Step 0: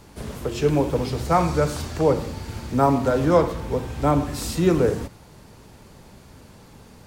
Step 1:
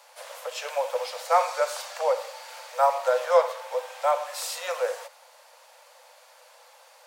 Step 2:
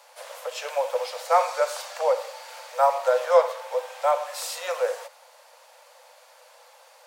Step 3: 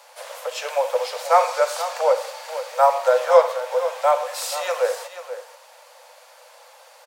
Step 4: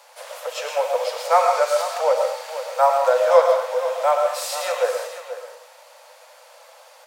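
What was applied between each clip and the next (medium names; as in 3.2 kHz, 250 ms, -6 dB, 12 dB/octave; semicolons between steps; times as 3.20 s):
Chebyshev high-pass 500 Hz, order 8
bass shelf 410 Hz +5.5 dB
delay 483 ms -12 dB; trim +4 dB
reverberation RT60 0.45 s, pre-delay 80 ms, DRR 4 dB; trim -1 dB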